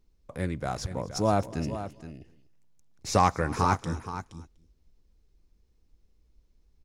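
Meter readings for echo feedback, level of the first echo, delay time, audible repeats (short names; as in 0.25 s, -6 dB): no steady repeat, -21.5 dB, 0.246 s, 3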